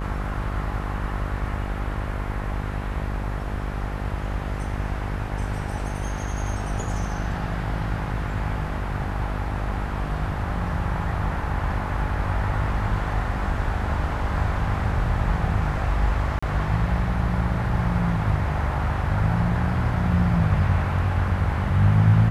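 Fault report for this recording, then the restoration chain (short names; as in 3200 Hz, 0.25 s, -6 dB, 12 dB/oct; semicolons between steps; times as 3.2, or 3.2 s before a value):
buzz 50 Hz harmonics 21 -29 dBFS
16.39–16.43 gap 35 ms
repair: de-hum 50 Hz, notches 21; interpolate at 16.39, 35 ms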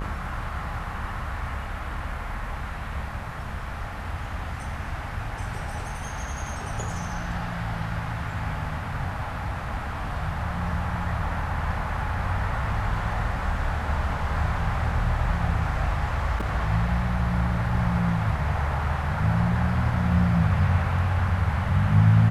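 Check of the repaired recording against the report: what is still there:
none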